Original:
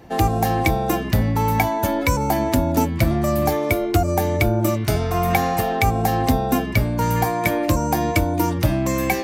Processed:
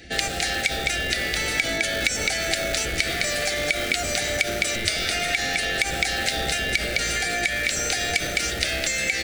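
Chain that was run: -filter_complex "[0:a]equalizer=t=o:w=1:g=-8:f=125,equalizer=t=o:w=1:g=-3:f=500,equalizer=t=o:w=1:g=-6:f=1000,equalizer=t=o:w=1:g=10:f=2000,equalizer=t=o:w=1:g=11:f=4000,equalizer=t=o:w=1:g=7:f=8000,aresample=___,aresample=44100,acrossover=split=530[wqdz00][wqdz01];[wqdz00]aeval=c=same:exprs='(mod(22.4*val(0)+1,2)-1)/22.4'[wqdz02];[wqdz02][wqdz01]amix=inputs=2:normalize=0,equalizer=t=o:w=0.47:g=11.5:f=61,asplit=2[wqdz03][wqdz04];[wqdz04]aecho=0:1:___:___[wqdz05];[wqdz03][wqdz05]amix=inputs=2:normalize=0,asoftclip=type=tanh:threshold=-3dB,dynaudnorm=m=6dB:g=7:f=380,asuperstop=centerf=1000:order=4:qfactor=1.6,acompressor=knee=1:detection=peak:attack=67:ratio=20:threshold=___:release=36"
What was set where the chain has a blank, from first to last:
22050, 210, 0.376, -29dB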